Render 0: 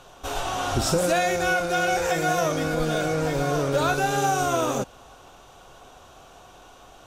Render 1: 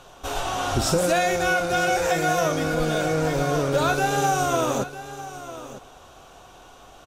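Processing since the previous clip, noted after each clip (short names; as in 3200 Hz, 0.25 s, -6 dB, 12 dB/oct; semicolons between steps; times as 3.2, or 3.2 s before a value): echo 0.951 s -14.5 dB; gain +1 dB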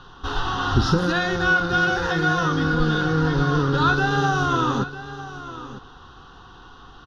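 air absorption 140 m; fixed phaser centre 2300 Hz, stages 6; gain +7 dB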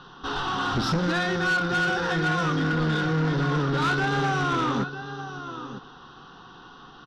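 elliptic low-pass 5900 Hz; resonant low shelf 110 Hz -11.5 dB, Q 1.5; soft clip -19.5 dBFS, distortion -12 dB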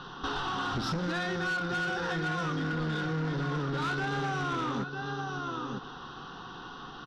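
compressor 4:1, threshold -35 dBFS, peak gain reduction 11 dB; gain +3 dB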